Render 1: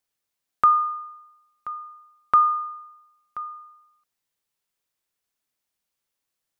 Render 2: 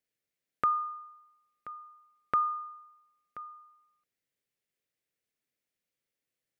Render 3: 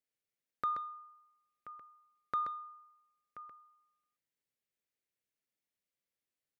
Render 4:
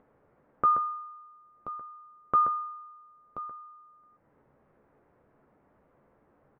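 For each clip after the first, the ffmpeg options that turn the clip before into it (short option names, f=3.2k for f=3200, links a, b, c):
-af "equalizer=f=125:t=o:w=1:g=7,equalizer=f=250:t=o:w=1:g=5,equalizer=f=500:t=o:w=1:g=9,equalizer=f=1k:t=o:w=1:g=-8,equalizer=f=2k:t=o:w=1:g=8,volume=-8.5dB"
-filter_complex "[0:a]asoftclip=type=tanh:threshold=-16.5dB,asplit=2[a][b];[b]aecho=0:1:129:0.473[c];[a][c]amix=inputs=2:normalize=0,volume=-6.5dB"
-filter_complex "[0:a]lowpass=f=1.2k:w=0.5412,lowpass=f=1.2k:w=1.3066,asplit=2[a][b];[b]acompressor=mode=upward:threshold=-49dB:ratio=2.5,volume=0dB[c];[a][c]amix=inputs=2:normalize=0,asplit=2[d][e];[e]adelay=14,volume=-10dB[f];[d][f]amix=inputs=2:normalize=0,volume=6.5dB"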